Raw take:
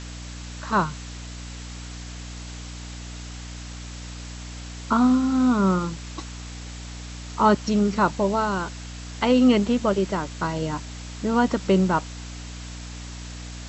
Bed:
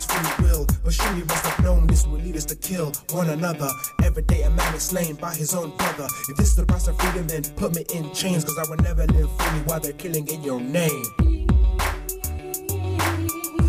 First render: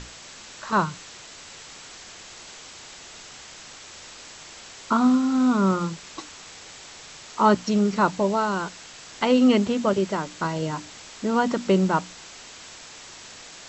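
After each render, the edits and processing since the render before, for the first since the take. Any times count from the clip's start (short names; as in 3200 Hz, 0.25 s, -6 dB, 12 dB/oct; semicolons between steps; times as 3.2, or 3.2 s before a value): notches 60/120/180/240/300 Hz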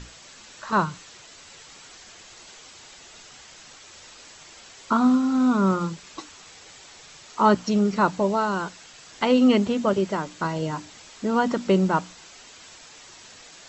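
denoiser 6 dB, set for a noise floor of -44 dBFS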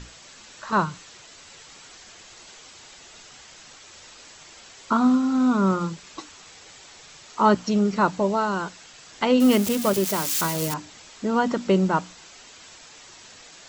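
9.4–10.74 switching spikes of -17 dBFS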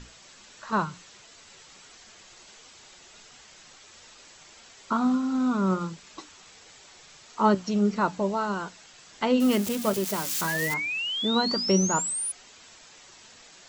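flange 1.5 Hz, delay 4.1 ms, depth 1.6 ms, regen +80%; 10.47–12.32 painted sound rise 1600–10000 Hz -30 dBFS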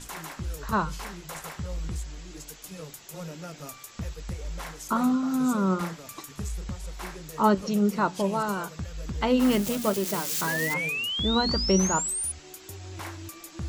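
add bed -16 dB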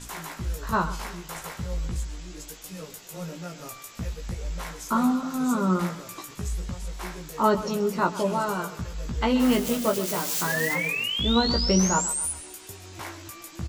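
doubler 17 ms -4 dB; thinning echo 0.131 s, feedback 50%, high-pass 210 Hz, level -14.5 dB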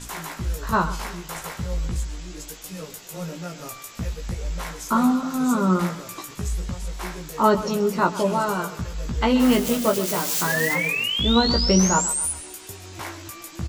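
gain +3.5 dB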